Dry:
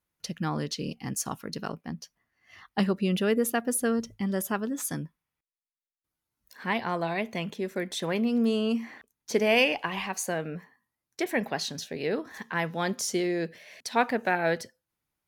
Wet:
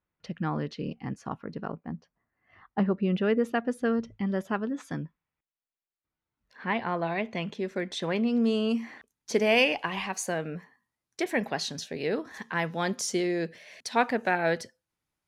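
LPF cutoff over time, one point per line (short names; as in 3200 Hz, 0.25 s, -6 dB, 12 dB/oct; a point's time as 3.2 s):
0.8 s 2300 Hz
1.76 s 1400 Hz
2.85 s 1400 Hz
3.37 s 2900 Hz
7.04 s 2900 Hz
7.55 s 5600 Hz
8.3 s 5600 Hz
8.74 s 10000 Hz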